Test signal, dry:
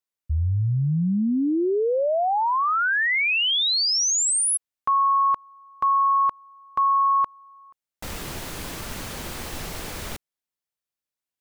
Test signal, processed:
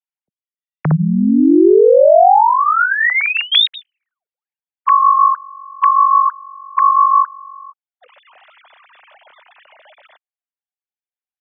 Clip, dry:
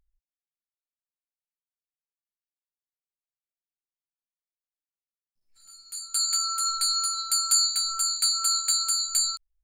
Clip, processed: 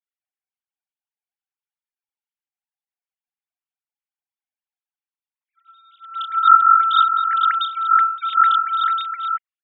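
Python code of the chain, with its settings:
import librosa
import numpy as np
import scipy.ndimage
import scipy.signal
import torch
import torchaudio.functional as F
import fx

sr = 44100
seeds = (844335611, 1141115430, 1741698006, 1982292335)

p1 = fx.sine_speech(x, sr)
p2 = fx.rider(p1, sr, range_db=4, speed_s=2.0)
p3 = p1 + (p2 * 10.0 ** (3.0 / 20.0))
y = p3 * 10.0 ** (1.5 / 20.0)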